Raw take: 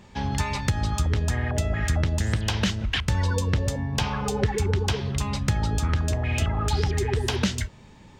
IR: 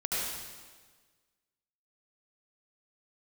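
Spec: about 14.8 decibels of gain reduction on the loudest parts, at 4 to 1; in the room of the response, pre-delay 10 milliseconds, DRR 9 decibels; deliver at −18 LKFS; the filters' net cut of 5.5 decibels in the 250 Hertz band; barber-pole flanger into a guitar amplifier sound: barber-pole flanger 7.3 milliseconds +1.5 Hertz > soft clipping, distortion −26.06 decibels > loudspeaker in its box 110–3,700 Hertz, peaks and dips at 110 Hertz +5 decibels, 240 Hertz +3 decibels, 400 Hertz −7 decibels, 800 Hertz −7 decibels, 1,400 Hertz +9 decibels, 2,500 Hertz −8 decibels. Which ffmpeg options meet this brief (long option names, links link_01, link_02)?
-filter_complex "[0:a]equalizer=frequency=250:width_type=o:gain=-9,acompressor=threshold=-39dB:ratio=4,asplit=2[link_01][link_02];[1:a]atrim=start_sample=2205,adelay=10[link_03];[link_02][link_03]afir=irnorm=-1:irlink=0,volume=-16.5dB[link_04];[link_01][link_04]amix=inputs=2:normalize=0,asplit=2[link_05][link_06];[link_06]adelay=7.3,afreqshift=1.5[link_07];[link_05][link_07]amix=inputs=2:normalize=1,asoftclip=threshold=-30dB,highpass=110,equalizer=frequency=110:width_type=q:width=4:gain=5,equalizer=frequency=240:width_type=q:width=4:gain=3,equalizer=frequency=400:width_type=q:width=4:gain=-7,equalizer=frequency=800:width_type=q:width=4:gain=-7,equalizer=frequency=1400:width_type=q:width=4:gain=9,equalizer=frequency=2500:width_type=q:width=4:gain=-8,lowpass=frequency=3700:width=0.5412,lowpass=frequency=3700:width=1.3066,volume=27.5dB"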